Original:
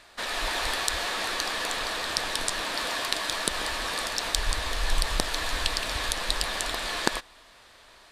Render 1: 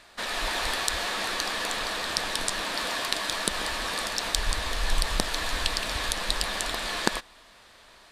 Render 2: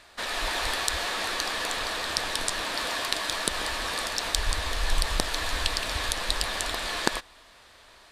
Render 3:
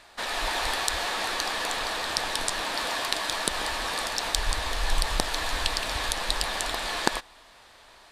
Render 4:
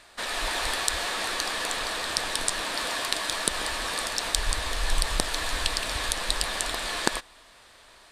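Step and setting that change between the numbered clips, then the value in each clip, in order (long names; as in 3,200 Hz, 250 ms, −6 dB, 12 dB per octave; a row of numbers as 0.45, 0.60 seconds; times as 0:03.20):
parametric band, centre frequency: 200, 73, 830, 8,700 Hertz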